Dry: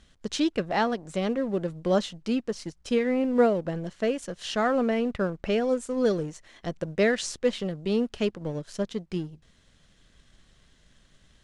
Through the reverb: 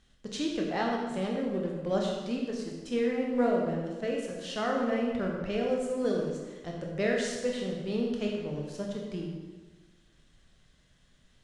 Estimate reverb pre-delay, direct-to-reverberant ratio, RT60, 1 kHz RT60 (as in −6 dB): 17 ms, −1.0 dB, 1.3 s, 1.3 s